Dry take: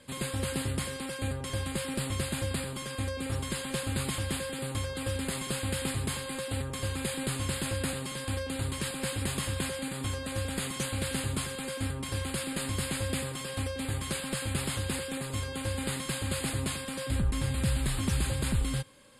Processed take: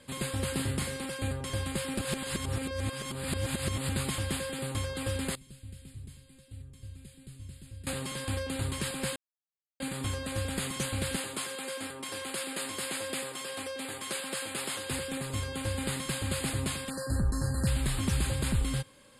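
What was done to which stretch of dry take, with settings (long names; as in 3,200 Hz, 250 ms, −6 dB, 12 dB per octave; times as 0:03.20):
0:00.52–0:01.05: double-tracking delay 37 ms −9 dB
0:01.99–0:03.89: reverse
0:05.35–0:07.87: guitar amp tone stack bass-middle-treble 10-0-1
0:09.16–0:09.80: silence
0:11.16–0:14.91: high-pass filter 340 Hz
0:16.90–0:17.67: linear-phase brick-wall band-stop 1,900–4,000 Hz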